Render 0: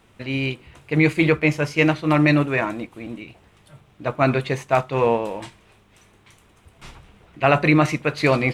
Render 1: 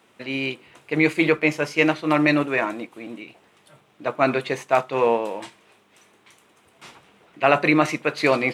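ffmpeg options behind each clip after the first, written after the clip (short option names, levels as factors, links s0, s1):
-af "highpass=250"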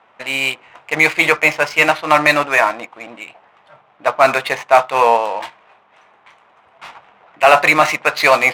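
-af "lowshelf=f=510:t=q:w=1.5:g=-12,apsyclip=3.76,adynamicsmooth=sensitivity=3:basefreq=1700,volume=0.841"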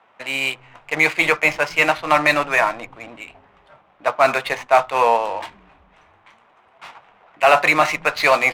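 -filter_complex "[0:a]acrossover=split=310|5900[s0][s1][s2];[s0]asplit=7[s3][s4][s5][s6][s7][s8][s9];[s4]adelay=260,afreqshift=-140,volume=0.251[s10];[s5]adelay=520,afreqshift=-280,volume=0.138[s11];[s6]adelay=780,afreqshift=-420,volume=0.0759[s12];[s7]adelay=1040,afreqshift=-560,volume=0.0417[s13];[s8]adelay=1300,afreqshift=-700,volume=0.0229[s14];[s9]adelay=1560,afreqshift=-840,volume=0.0126[s15];[s3][s10][s11][s12][s13][s14][s15]amix=inputs=7:normalize=0[s16];[s2]asoftclip=type=tanh:threshold=0.0376[s17];[s16][s1][s17]amix=inputs=3:normalize=0,volume=0.668"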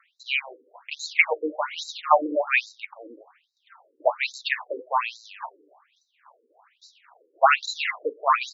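-af "afftfilt=real='re*between(b*sr/1024,360*pow(5400/360,0.5+0.5*sin(2*PI*1.2*pts/sr))/1.41,360*pow(5400/360,0.5+0.5*sin(2*PI*1.2*pts/sr))*1.41)':imag='im*between(b*sr/1024,360*pow(5400/360,0.5+0.5*sin(2*PI*1.2*pts/sr))/1.41,360*pow(5400/360,0.5+0.5*sin(2*PI*1.2*pts/sr))*1.41)':win_size=1024:overlap=0.75,volume=1.12"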